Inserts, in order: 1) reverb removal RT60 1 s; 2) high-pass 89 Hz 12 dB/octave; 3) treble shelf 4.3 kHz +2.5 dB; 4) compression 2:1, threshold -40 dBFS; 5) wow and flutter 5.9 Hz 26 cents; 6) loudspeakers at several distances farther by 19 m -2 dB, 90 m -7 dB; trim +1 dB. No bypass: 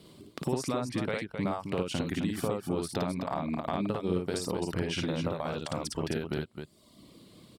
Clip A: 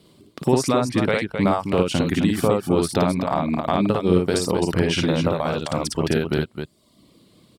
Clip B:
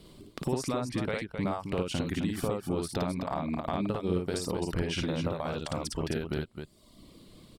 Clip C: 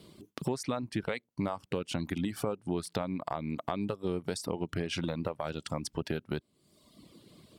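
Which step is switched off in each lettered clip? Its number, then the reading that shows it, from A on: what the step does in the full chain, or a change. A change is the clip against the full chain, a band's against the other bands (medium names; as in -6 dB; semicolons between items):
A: 4, mean gain reduction 10.5 dB; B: 2, crest factor change -2.0 dB; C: 6, echo-to-direct -1.0 dB to none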